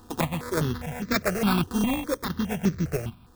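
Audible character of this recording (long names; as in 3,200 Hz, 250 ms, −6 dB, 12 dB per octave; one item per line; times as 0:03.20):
a buzz of ramps at a fixed pitch in blocks of 16 samples
sample-and-hold tremolo
aliases and images of a low sample rate 3,000 Hz, jitter 0%
notches that jump at a steady rate 4.9 Hz 590–3,000 Hz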